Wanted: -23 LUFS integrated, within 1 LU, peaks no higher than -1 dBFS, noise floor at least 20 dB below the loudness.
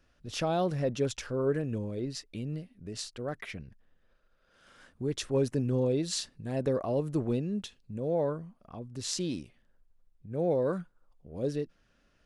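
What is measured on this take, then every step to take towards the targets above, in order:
loudness -32.5 LUFS; peak level -15.0 dBFS; loudness target -23.0 LUFS
-> trim +9.5 dB

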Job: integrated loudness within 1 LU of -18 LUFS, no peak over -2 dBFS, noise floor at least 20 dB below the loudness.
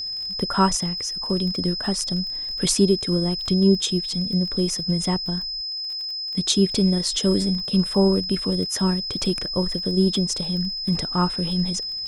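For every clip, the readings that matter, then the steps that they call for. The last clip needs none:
tick rate 29 per s; steady tone 5.1 kHz; tone level -27 dBFS; loudness -22.0 LUFS; peak level -6.0 dBFS; loudness target -18.0 LUFS
-> de-click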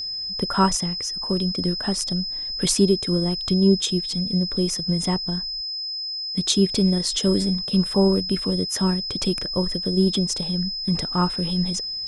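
tick rate 0.083 per s; steady tone 5.1 kHz; tone level -27 dBFS
-> band-stop 5.1 kHz, Q 30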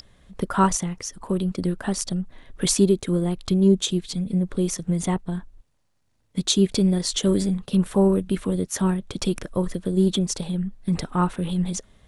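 steady tone not found; loudness -23.5 LUFS; peak level -6.5 dBFS; loudness target -18.0 LUFS
-> trim +5.5 dB; peak limiter -2 dBFS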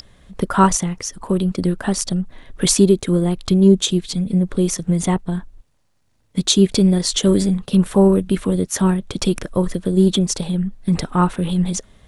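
loudness -18.0 LUFS; peak level -2.0 dBFS; noise floor -62 dBFS

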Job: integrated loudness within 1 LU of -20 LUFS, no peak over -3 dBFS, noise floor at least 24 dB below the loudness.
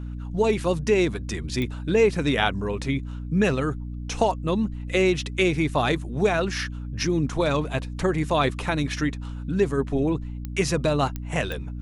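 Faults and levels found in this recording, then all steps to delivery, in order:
clicks found 4; hum 60 Hz; highest harmonic 300 Hz; hum level -30 dBFS; loudness -24.5 LUFS; peak level -5.5 dBFS; loudness target -20.0 LUFS
-> de-click; de-hum 60 Hz, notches 5; trim +4.5 dB; peak limiter -3 dBFS

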